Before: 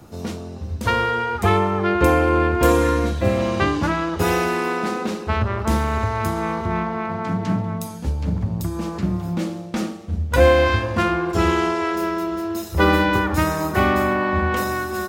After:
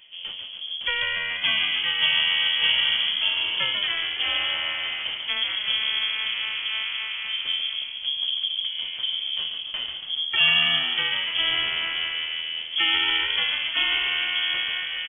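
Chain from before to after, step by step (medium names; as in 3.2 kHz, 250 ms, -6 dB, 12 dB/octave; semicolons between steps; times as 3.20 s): frequency-shifting echo 141 ms, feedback 61%, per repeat -80 Hz, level -6 dB; frequency inversion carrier 3.3 kHz; trim -7 dB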